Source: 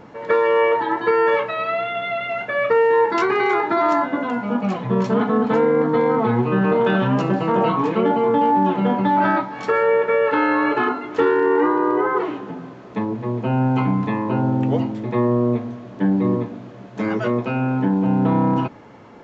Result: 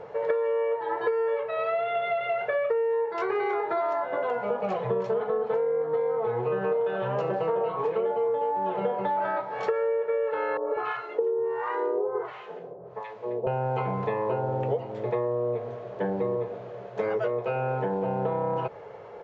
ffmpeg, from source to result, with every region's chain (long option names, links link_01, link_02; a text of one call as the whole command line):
ffmpeg -i in.wav -filter_complex "[0:a]asettb=1/sr,asplit=3[link_01][link_02][link_03];[link_01]atrim=end=10.574[link_04];[link_02]atrim=start=10.57:end=13.47,asetpts=PTS-STARTPTS,afade=type=in:duration=0.004:curve=qsin,afade=type=out:start_time=2.896:duration=0.004:curve=qsin,acrossover=split=820[link_05][link_06];[link_05]aeval=exprs='val(0)*(1-1/2+1/2*cos(2*PI*1.4*n/s))':channel_layout=same[link_07];[link_06]aeval=exprs='val(0)*(1-1/2-1/2*cos(2*PI*1.4*n/s))':channel_layout=same[link_08];[link_07][link_08]amix=inputs=2:normalize=0,acrossover=split=170|1400[link_09][link_10][link_11];[link_11]adelay=80[link_12];[link_09]adelay=190[link_13];[link_13][link_10][link_12]amix=inputs=3:normalize=0,atrim=end_sample=127890[link_14];[link_03]atrim=start=13.466[link_15];[link_04][link_14]acrossfade=duration=0.004:curve1=hsin:curve2=qsin[link_16];[link_16][link_15]acrossfade=duration=0.004:curve1=qsin:curve2=hsin,firequalizer=gain_entry='entry(160,0);entry(260,-16);entry(430,14);entry(1000,5)':delay=0.05:min_phase=1,acompressor=threshold=-17dB:ratio=12,lowpass=frequency=2600:poles=1,volume=-6.5dB" out.wav